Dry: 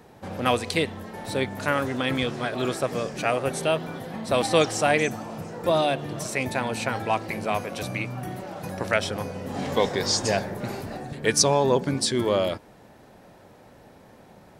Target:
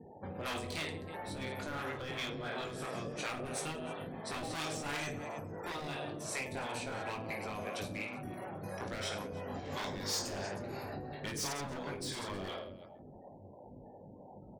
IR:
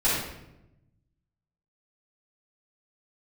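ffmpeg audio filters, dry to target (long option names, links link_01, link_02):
-filter_complex "[0:a]afftfilt=real='re*gte(hypot(re,im),0.00631)':imag='im*gte(hypot(re,im),0.00631)':win_size=1024:overlap=0.75,asplit=2[link_01][link_02];[link_02]aecho=0:1:20|52|103.2|185.1|316.2:0.631|0.398|0.251|0.158|0.1[link_03];[link_01][link_03]amix=inputs=2:normalize=0,asoftclip=type=hard:threshold=-20.5dB,asplit=2[link_04][link_05];[link_05]adelay=141,lowpass=frequency=1300:poles=1,volume=-14.5dB,asplit=2[link_06][link_07];[link_07]adelay=141,lowpass=frequency=1300:poles=1,volume=0.23[link_08];[link_06][link_08]amix=inputs=2:normalize=0[link_09];[link_04][link_09]amix=inputs=2:normalize=0,acrossover=split=430[link_10][link_11];[link_10]aeval=exprs='val(0)*(1-0.7/2+0.7/2*cos(2*PI*2.9*n/s))':channel_layout=same[link_12];[link_11]aeval=exprs='val(0)*(1-0.7/2-0.7/2*cos(2*PI*2.9*n/s))':channel_layout=same[link_13];[link_12][link_13]amix=inputs=2:normalize=0,acompressor=threshold=-53dB:ratio=1.5,afftfilt=real='re*lt(hypot(re,im),0.0708)':imag='im*lt(hypot(re,im),0.0708)':win_size=1024:overlap=0.75,volume=1.5dB"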